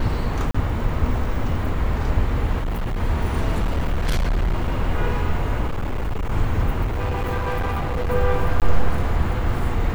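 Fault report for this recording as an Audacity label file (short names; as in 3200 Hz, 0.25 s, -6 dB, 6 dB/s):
0.510000	0.550000	gap 35 ms
2.600000	3.000000	clipped -20.5 dBFS
3.610000	4.780000	clipped -16.5 dBFS
5.670000	6.320000	clipped -20 dBFS
6.840000	8.110000	clipped -19.5 dBFS
8.600000	8.620000	gap 18 ms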